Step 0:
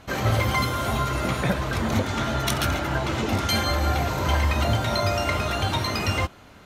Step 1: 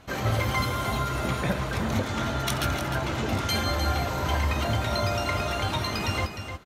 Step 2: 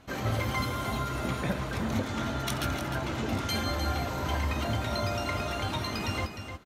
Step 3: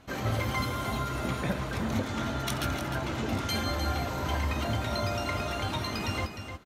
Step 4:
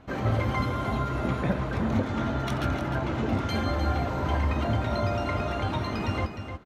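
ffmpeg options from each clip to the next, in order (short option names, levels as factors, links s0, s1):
-af "aecho=1:1:305:0.376,volume=0.668"
-af "equalizer=f=260:w=2.1:g=4,volume=0.596"
-af anull
-af "lowpass=f=1400:p=1,volume=1.68"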